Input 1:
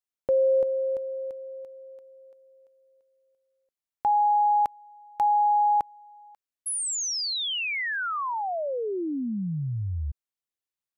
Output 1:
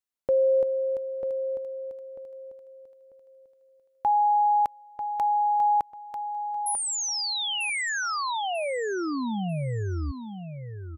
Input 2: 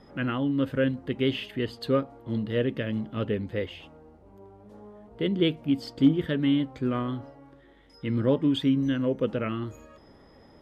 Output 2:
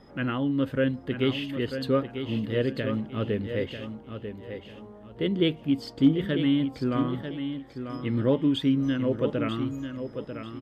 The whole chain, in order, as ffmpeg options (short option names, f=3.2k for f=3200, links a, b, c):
-af "aecho=1:1:943|1886|2829:0.376|0.101|0.0274"